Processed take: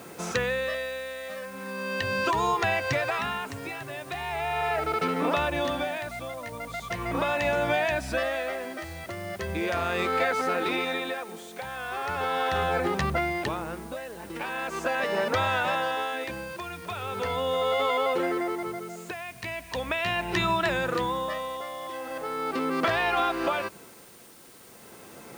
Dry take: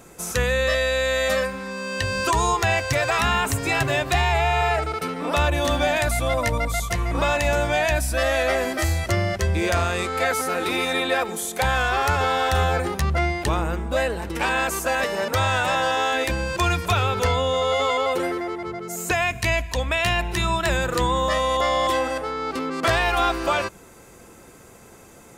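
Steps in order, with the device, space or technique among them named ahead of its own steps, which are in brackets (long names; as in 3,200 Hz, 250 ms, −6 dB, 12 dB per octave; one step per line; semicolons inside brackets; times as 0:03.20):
medium wave at night (band-pass filter 140–3,800 Hz; downward compressor, threshold −26 dBFS, peak gain reduction 9 dB; amplitude tremolo 0.39 Hz, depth 75%; steady tone 9,000 Hz −63 dBFS; white noise bed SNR 24 dB)
level +4 dB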